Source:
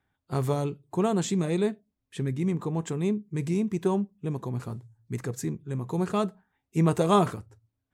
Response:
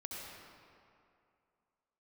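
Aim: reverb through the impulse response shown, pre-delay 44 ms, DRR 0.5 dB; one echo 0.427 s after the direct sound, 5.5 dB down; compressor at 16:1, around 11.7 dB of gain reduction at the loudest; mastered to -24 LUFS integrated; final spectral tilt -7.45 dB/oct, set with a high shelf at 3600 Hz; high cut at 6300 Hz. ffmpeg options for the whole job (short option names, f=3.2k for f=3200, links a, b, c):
-filter_complex "[0:a]lowpass=6.3k,highshelf=f=3.6k:g=4.5,acompressor=threshold=-27dB:ratio=16,aecho=1:1:427:0.531,asplit=2[a][b];[1:a]atrim=start_sample=2205,adelay=44[c];[b][c]afir=irnorm=-1:irlink=0,volume=0dB[d];[a][d]amix=inputs=2:normalize=0,volume=6.5dB"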